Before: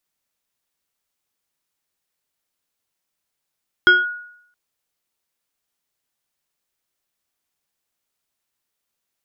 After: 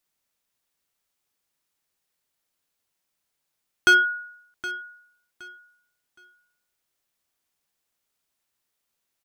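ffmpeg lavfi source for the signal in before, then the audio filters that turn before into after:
-f lavfi -i "aevalsrc='0.531*pow(10,-3*t/0.7)*sin(2*PI*1450*t+0.56*clip(1-t/0.19,0,1)*sin(2*PI*1.25*1450*t))':d=0.67:s=44100"
-af "asoftclip=type=hard:threshold=-12.5dB,aecho=1:1:768|1536|2304:0.168|0.0436|0.0113"

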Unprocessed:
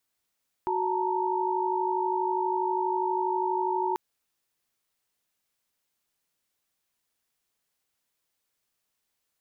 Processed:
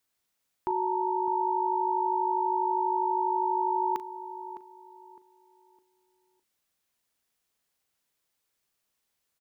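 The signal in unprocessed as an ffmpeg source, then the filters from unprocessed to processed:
-f lavfi -i "aevalsrc='0.0355*(sin(2*PI*369.99*t)+sin(2*PI*880*t)+sin(2*PI*932.33*t))':d=3.29:s=44100"
-filter_complex "[0:a]asplit=2[a][b];[b]adelay=39,volume=-14dB[c];[a][c]amix=inputs=2:normalize=0,asplit=2[d][e];[e]adelay=609,lowpass=f=1.1k:p=1,volume=-11dB,asplit=2[f][g];[g]adelay=609,lowpass=f=1.1k:p=1,volume=0.35,asplit=2[h][i];[i]adelay=609,lowpass=f=1.1k:p=1,volume=0.35,asplit=2[j][k];[k]adelay=609,lowpass=f=1.1k:p=1,volume=0.35[l];[f][h][j][l]amix=inputs=4:normalize=0[m];[d][m]amix=inputs=2:normalize=0"

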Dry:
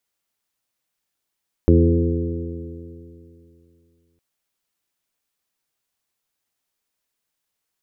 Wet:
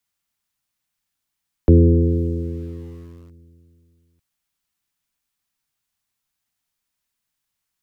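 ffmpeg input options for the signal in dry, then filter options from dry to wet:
-f lavfi -i "aevalsrc='0.251*pow(10,-3*t/2.71)*sin(2*PI*82.89*t)+0.126*pow(10,-3*t/2.71)*sin(2*PI*166.29*t)+0.126*pow(10,-3*t/2.71)*sin(2*PI*250.74*t)+0.178*pow(10,-3*t/2.71)*sin(2*PI*336.72*t)+0.112*pow(10,-3*t/2.71)*sin(2*PI*424.73*t)+0.0531*pow(10,-3*t/2.71)*sin(2*PI*515.24*t)':d=2.51:s=44100"
-filter_complex "[0:a]lowshelf=f=190:g=5,acrossover=split=120|340|620[a][b][c][d];[c]aeval=exprs='val(0)*gte(abs(val(0)),0.00299)':c=same[e];[a][b][e][d]amix=inputs=4:normalize=0"

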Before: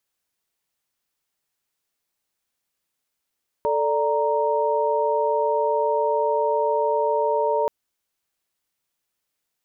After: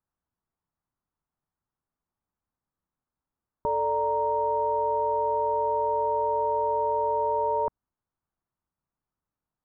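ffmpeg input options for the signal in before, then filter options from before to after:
-f lavfi -i "aevalsrc='0.0708*(sin(2*PI*440*t)+sin(2*PI*587.33*t)+sin(2*PI*932.33*t))':d=4.03:s=44100"
-af "acontrast=90,lowpass=f=1.1k:w=0.5412,lowpass=f=1.1k:w=1.3066,equalizer=f=520:w=0.67:g=-13.5"

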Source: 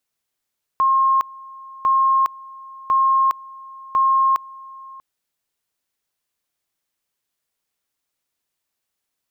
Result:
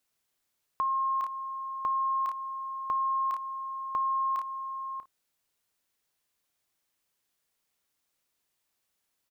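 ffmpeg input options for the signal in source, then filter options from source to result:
-f lavfi -i "aevalsrc='pow(10,(-13-22.5*gte(mod(t,1.05),0.41))/20)*sin(2*PI*1070*t)':d=4.2:s=44100"
-filter_complex "[0:a]asplit=2[a][b];[b]aecho=0:1:31|56:0.237|0.15[c];[a][c]amix=inputs=2:normalize=0,alimiter=limit=-21dB:level=0:latency=1:release=17,acompressor=threshold=-27dB:ratio=6"

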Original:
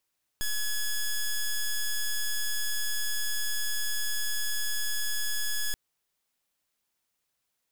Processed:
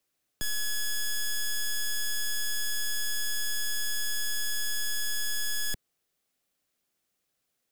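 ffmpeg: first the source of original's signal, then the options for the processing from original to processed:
-f lavfi -i "aevalsrc='0.0398*(2*lt(mod(1690*t,1),0.08)-1)':d=5.33:s=44100"
-filter_complex "[0:a]bandreject=f=940:w=5.9,acrossover=split=130|670|2300[a][b][c][d];[b]acontrast=30[e];[a][e][c][d]amix=inputs=4:normalize=0"

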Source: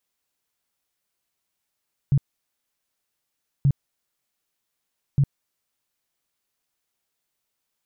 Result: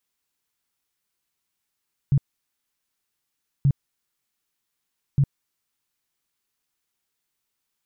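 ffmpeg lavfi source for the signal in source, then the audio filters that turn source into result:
-f lavfi -i "aevalsrc='0.2*sin(2*PI*139*mod(t,1.53))*lt(mod(t,1.53),8/139)':d=4.59:s=44100"
-af "equalizer=f=610:t=o:w=0.55:g=-7"

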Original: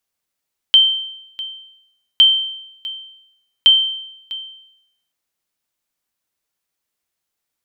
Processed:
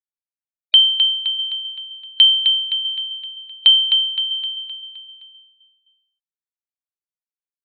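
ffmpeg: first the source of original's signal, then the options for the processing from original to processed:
-f lavfi -i "aevalsrc='0.668*(sin(2*PI*3120*mod(t,1.46))*exp(-6.91*mod(t,1.46)/0.82)+0.126*sin(2*PI*3120*max(mod(t,1.46)-0.65,0))*exp(-6.91*max(mod(t,1.46)-0.65,0)/0.82))':d=4.38:s=44100"
-filter_complex "[0:a]afftfilt=real='re*gte(hypot(re,im),0.0447)':imag='im*gte(hypot(re,im),0.0447)':win_size=1024:overlap=0.75,asplit=2[a][b];[b]aecho=0:1:259|518|777|1036|1295|1554:0.447|0.237|0.125|0.0665|0.0352|0.0187[c];[a][c]amix=inputs=2:normalize=0"

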